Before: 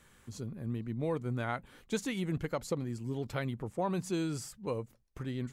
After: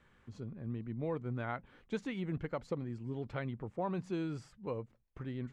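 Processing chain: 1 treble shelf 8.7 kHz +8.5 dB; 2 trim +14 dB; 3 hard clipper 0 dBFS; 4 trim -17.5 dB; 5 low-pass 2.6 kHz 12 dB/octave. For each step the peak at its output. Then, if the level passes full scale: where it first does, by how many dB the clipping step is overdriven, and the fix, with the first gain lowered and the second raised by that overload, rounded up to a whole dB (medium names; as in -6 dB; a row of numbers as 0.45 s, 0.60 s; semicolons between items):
-19.0 dBFS, -5.0 dBFS, -5.0 dBFS, -22.5 dBFS, -23.0 dBFS; nothing clips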